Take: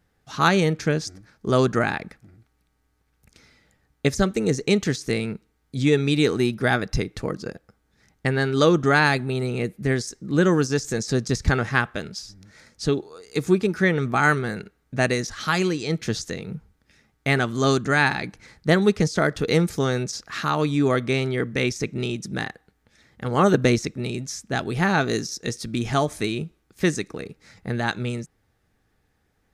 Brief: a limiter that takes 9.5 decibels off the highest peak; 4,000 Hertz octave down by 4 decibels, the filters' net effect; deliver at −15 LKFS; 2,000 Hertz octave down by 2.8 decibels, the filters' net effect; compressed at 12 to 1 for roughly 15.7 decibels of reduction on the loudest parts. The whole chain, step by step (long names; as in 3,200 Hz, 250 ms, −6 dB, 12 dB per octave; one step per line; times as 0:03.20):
parametric band 2,000 Hz −3 dB
parametric band 4,000 Hz −4 dB
downward compressor 12 to 1, threshold −29 dBFS
level +22.5 dB
brickwall limiter −3 dBFS